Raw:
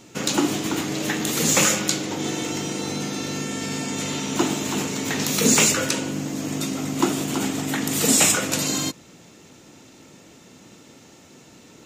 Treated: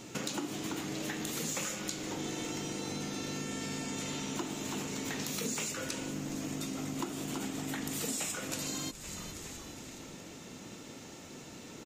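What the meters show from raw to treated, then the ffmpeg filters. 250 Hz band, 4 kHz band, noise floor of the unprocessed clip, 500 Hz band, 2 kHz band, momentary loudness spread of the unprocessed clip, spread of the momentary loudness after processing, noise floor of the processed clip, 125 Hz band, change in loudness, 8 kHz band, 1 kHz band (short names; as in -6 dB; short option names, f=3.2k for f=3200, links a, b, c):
-13.0 dB, -14.0 dB, -49 dBFS, -13.5 dB, -14.5 dB, 11 LU, 13 LU, -49 dBFS, -12.0 dB, -15.0 dB, -15.5 dB, -13.5 dB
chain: -filter_complex "[0:a]asplit=5[a][b][c][d][e];[b]adelay=416,afreqshift=-110,volume=-20.5dB[f];[c]adelay=832,afreqshift=-220,volume=-26.5dB[g];[d]adelay=1248,afreqshift=-330,volume=-32.5dB[h];[e]adelay=1664,afreqshift=-440,volume=-38.6dB[i];[a][f][g][h][i]amix=inputs=5:normalize=0,acompressor=threshold=-36dB:ratio=5"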